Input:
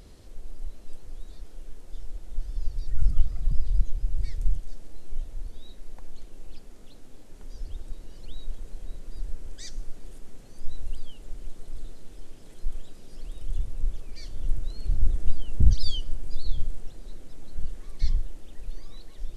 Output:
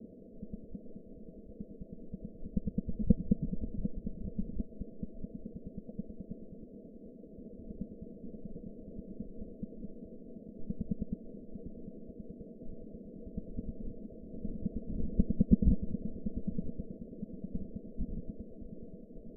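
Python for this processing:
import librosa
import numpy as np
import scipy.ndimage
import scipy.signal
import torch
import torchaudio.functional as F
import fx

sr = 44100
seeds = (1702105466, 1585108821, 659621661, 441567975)

y = fx.local_reverse(x, sr, ms=107.0)
y = fx.hpss(y, sr, part='harmonic', gain_db=-14)
y = scipy.signal.sosfilt(scipy.signal.cheby1(6, 9, 670.0, 'lowpass', fs=sr, output='sos'), y)
y = fx.low_shelf_res(y, sr, hz=170.0, db=-9.5, q=3.0)
y = y * 10.0 ** (12.5 / 20.0)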